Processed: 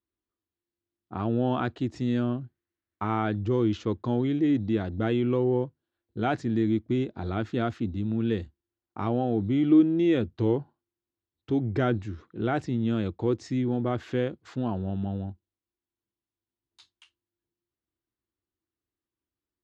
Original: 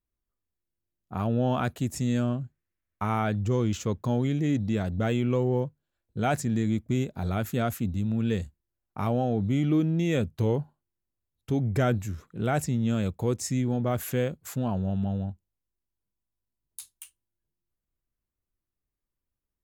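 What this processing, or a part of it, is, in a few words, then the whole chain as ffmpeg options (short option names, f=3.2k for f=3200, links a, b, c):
guitar cabinet: -af "highpass=90,equalizer=f=160:t=q:w=4:g=-9,equalizer=f=330:t=q:w=4:g=9,equalizer=f=580:t=q:w=4:g=-4,equalizer=f=2.4k:t=q:w=4:g=-4,lowpass=f=4.4k:w=0.5412,lowpass=f=4.4k:w=1.3066"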